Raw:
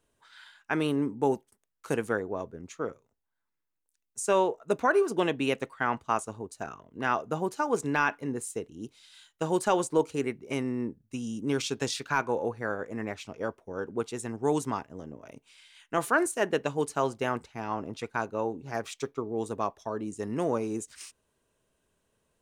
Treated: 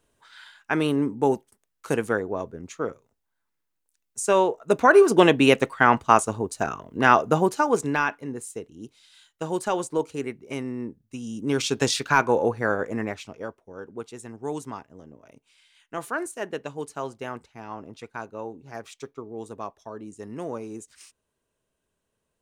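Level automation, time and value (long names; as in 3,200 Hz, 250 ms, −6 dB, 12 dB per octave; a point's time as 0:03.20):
0:04.56 +4.5 dB
0:05.10 +11 dB
0:07.30 +11 dB
0:08.23 −0.5 dB
0:11.19 −0.5 dB
0:11.81 +8 dB
0:12.89 +8 dB
0:13.61 −4.5 dB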